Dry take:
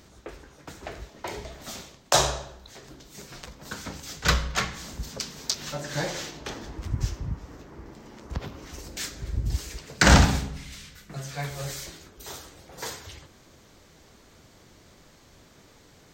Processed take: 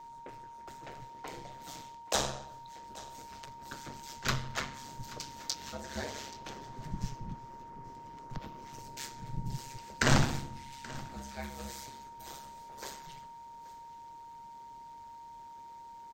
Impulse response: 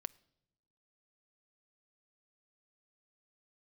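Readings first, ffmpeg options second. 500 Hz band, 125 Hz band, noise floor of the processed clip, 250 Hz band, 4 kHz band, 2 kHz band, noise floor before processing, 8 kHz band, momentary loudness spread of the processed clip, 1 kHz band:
-9.0 dB, -9.0 dB, -49 dBFS, -8.0 dB, -9.5 dB, -9.5 dB, -55 dBFS, -9.5 dB, 16 LU, -6.5 dB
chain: -af "aeval=exprs='val(0)*sin(2*PI*69*n/s)':c=same,aecho=1:1:830:0.112,aeval=exprs='val(0)+0.01*sin(2*PI*930*n/s)':c=same,volume=0.473"

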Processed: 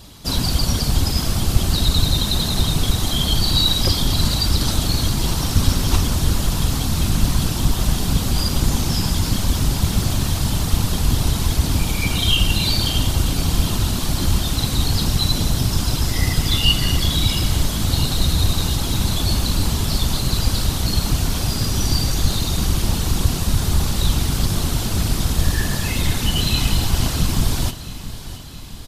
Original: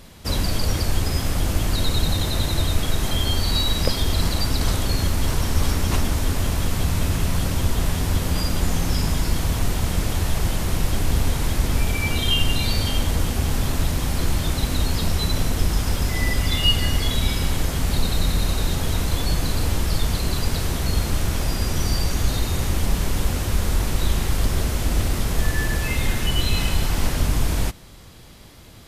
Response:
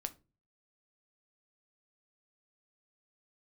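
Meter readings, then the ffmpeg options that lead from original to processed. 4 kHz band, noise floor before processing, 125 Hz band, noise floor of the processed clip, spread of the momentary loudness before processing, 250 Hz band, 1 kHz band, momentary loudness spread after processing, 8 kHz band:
+5.5 dB, -28 dBFS, +3.5 dB, -26 dBFS, 2 LU, +4.0 dB, +1.5 dB, 3 LU, +5.0 dB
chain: -af "afftfilt=real='hypot(re,im)*cos(2*PI*random(0))':imag='hypot(re,im)*sin(2*PI*random(1))':win_size=512:overlap=0.75,acontrast=42,equalizer=f=125:t=o:w=1:g=-4,equalizer=f=500:t=o:w=1:g=-6,equalizer=f=2000:t=o:w=1:g=-7,equalizer=f=4000:t=o:w=1:g=4,aecho=1:1:669|1338|2007|2676|3345|4014:0.188|0.107|0.0612|0.0349|0.0199|0.0113,volume=1.68"

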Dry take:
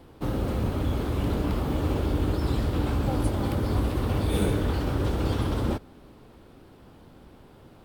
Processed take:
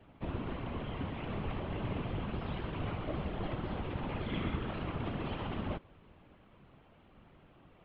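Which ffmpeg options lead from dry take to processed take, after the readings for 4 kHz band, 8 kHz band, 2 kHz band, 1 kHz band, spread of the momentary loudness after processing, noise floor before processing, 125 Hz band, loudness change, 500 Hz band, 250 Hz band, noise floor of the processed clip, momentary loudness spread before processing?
-8.5 dB, under -35 dB, -5.5 dB, -7.5 dB, 3 LU, -52 dBFS, -12.0 dB, -11.5 dB, -10.5 dB, -11.0 dB, -62 dBFS, 3 LU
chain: -af "highpass=f=220:t=q:w=0.5412,highpass=f=220:t=q:w=1.307,lowpass=f=3300:t=q:w=0.5176,lowpass=f=3300:t=q:w=0.7071,lowpass=f=3300:t=q:w=1.932,afreqshift=-210,highshelf=f=2100:g=4.5,afftfilt=real='hypot(re,im)*cos(2*PI*random(0))':imag='hypot(re,im)*sin(2*PI*random(1))':win_size=512:overlap=0.75"

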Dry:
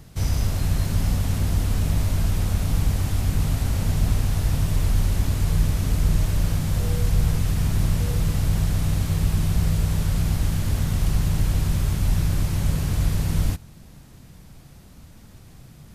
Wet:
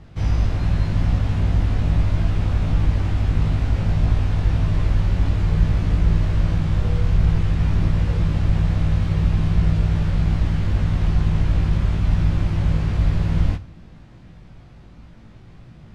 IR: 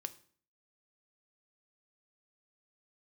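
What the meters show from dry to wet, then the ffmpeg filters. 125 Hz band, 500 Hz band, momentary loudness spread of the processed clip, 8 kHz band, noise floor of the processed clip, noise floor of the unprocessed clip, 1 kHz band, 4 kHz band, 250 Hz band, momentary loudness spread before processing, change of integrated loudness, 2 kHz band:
+3.0 dB, +2.5 dB, 2 LU, under -10 dB, -44 dBFS, -47 dBFS, +2.5 dB, -3.0 dB, +3.0 dB, 2 LU, +2.5 dB, +1.5 dB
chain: -filter_complex "[0:a]lowpass=3000,asplit=2[s0][s1];[1:a]atrim=start_sample=2205,adelay=18[s2];[s1][s2]afir=irnorm=-1:irlink=0,volume=1.19[s3];[s0][s3]amix=inputs=2:normalize=0"

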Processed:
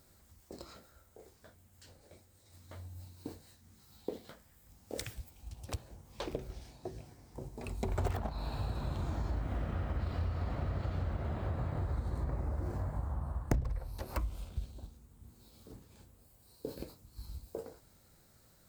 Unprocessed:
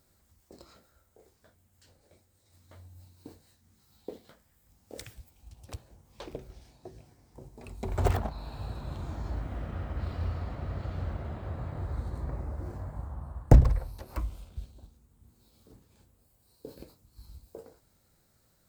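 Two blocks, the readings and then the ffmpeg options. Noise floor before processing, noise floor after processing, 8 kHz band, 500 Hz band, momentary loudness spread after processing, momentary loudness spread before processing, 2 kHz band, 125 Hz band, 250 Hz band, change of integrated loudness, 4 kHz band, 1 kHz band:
-69 dBFS, -65 dBFS, +1.0 dB, -3.5 dB, 20 LU, 20 LU, -1.5 dB, -5.5 dB, -4.0 dB, -7.5 dB, +1.0 dB, -3.5 dB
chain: -af "acompressor=threshold=0.0158:ratio=4,volume=1.58"

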